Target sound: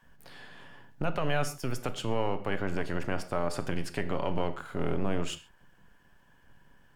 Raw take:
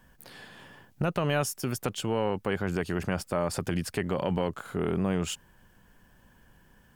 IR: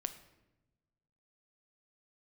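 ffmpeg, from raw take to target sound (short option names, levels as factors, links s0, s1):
-filter_complex "[0:a]highshelf=f=7100:g=-10.5,acrossover=split=620|2600[s0][s1][s2];[s0]aeval=exprs='max(val(0),0)':c=same[s3];[s3][s1][s2]amix=inputs=3:normalize=0[s4];[1:a]atrim=start_sample=2205,atrim=end_sample=6174,asetrate=41454,aresample=44100[s5];[s4][s5]afir=irnorm=-1:irlink=0"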